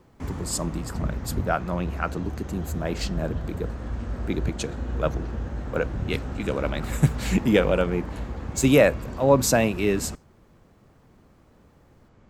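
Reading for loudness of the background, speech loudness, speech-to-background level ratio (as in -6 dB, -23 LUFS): -33.5 LUFS, -25.5 LUFS, 8.0 dB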